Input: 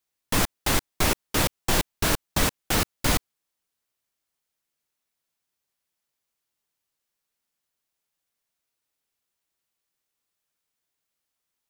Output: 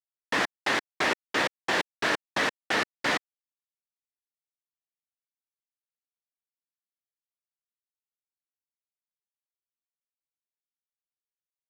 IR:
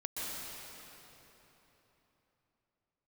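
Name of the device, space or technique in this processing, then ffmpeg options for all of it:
pocket radio on a weak battery: -af "highpass=330,lowpass=3.9k,aeval=exprs='sgn(val(0))*max(abs(val(0))-0.00299,0)':c=same,equalizer=f=1.8k:t=o:w=0.31:g=8"

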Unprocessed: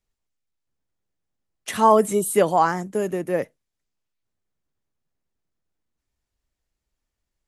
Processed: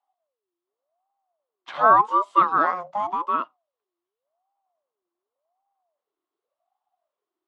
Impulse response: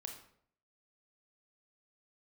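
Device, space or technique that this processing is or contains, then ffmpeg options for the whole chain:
voice changer toy: -filter_complex "[0:a]aeval=exprs='val(0)*sin(2*PI*570*n/s+570*0.4/0.88*sin(2*PI*0.88*n/s))':c=same,highpass=440,equalizer=f=470:t=q:w=4:g=-7,equalizer=f=700:t=q:w=4:g=5,equalizer=f=1.1k:t=q:w=4:g=10,equalizer=f=1.7k:t=q:w=4:g=-4,equalizer=f=2.4k:t=q:w=4:g=-8,lowpass=f=3.6k:w=0.5412,lowpass=f=3.6k:w=1.3066,asettb=1/sr,asplit=3[a][b][c];[a]atrim=end=2.874[d];[b]atrim=start=2.87:end=3.35,asetpts=PTS-STARTPTS,afade=t=in:d=0.004:c=qsin,afade=t=out:st=0.476:d=0.004:c=qsin,equalizer=f=6.8k:t=o:w=1.3:g=7[e];[c]atrim=start=3.346[f];[d][e]acrossfade=d=0.004:c1=hsin:c2=qsin[g];[g][f]acrossfade=d=0.004:c1=qsin:c2=hsin"

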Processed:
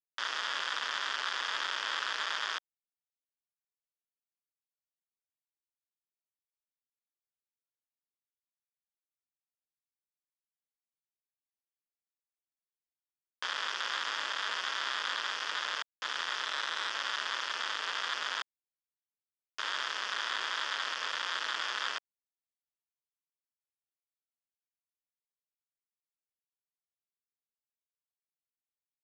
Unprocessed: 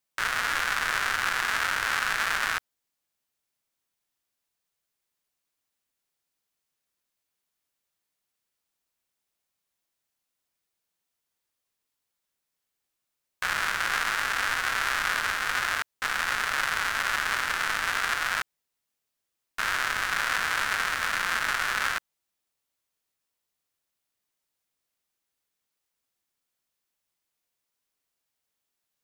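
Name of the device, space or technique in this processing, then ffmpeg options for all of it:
hand-held game console: -filter_complex "[0:a]asettb=1/sr,asplit=3[a][b][c];[a]atrim=end=16.454[d];[b]atrim=start=16.45:end=16.91,asetpts=PTS-STARTPTS,afade=t=in:d=0.004:c=qsin,afade=t=out:st=0.456:d=0.004:c=qsin,highpass=f=250:w=0.5412,highpass=f=250:w=1.3066[e];[c]atrim=start=16.906[f];[d][e]acrossfade=d=0.004:c1=hsin:c2=qsin[g];[g][f]acrossfade=d=0.004:c1=qsin:c2=hsin,acrusher=bits=3:mix=0:aa=0.000001,highpass=460,equalizer=f=750:t=q:w=4:g=-7,equalizer=f=2.2k:t=q:w=4:g=-9,equalizer=f=3.3k:t=q:w=4:g=7,lowpass=f=5.5k:w=0.5412,lowpass=f=5.5k:w=1.3066,volume=-6.5dB"

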